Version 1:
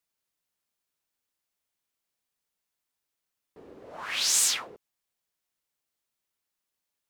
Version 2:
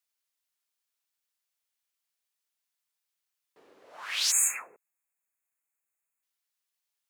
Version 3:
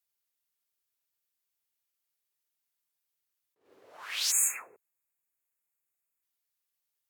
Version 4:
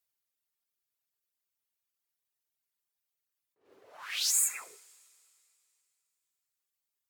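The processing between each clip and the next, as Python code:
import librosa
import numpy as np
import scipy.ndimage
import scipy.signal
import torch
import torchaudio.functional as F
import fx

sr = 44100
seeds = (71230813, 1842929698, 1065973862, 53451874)

y1 = fx.spec_erase(x, sr, start_s=4.31, length_s=1.92, low_hz=2700.0, high_hz=6400.0)
y1 = fx.highpass(y1, sr, hz=1400.0, slope=6)
y2 = fx.graphic_eq_15(y1, sr, hz=(100, 400, 16000), db=(10, 4, 8))
y2 = fx.attack_slew(y2, sr, db_per_s=140.0)
y2 = F.gain(torch.from_numpy(y2), -3.5).numpy()
y3 = fx.dereverb_blind(y2, sr, rt60_s=1.7)
y3 = fx.rev_double_slope(y3, sr, seeds[0], early_s=0.65, late_s=3.0, knee_db=-15, drr_db=13.5)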